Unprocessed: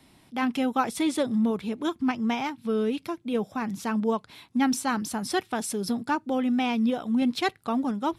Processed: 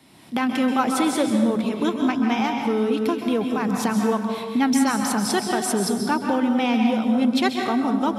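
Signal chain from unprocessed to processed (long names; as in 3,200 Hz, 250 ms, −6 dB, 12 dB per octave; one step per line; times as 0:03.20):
camcorder AGC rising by 26 dB per second
high-pass filter 110 Hz
dense smooth reverb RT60 1.3 s, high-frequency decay 0.65×, pre-delay 120 ms, DRR 2.5 dB
level +3 dB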